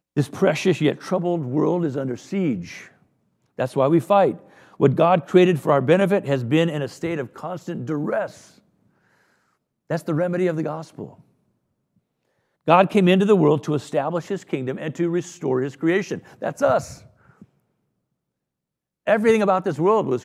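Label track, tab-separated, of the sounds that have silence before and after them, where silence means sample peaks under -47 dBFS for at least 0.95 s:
9.900000	11.210000	sound
12.670000	17.440000	sound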